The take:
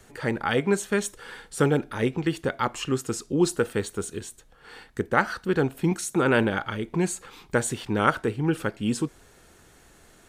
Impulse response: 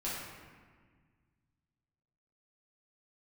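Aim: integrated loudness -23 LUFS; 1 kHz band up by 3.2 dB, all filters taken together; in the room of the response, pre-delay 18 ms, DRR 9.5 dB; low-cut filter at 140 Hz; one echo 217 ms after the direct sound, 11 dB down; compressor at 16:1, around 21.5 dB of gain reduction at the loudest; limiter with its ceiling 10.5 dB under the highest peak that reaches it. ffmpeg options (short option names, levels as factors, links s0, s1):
-filter_complex "[0:a]highpass=140,equalizer=f=1000:t=o:g=4.5,acompressor=threshold=0.02:ratio=16,alimiter=level_in=1.78:limit=0.0631:level=0:latency=1,volume=0.562,aecho=1:1:217:0.282,asplit=2[s0][s1];[1:a]atrim=start_sample=2205,adelay=18[s2];[s1][s2]afir=irnorm=-1:irlink=0,volume=0.211[s3];[s0][s3]amix=inputs=2:normalize=0,volume=7.94"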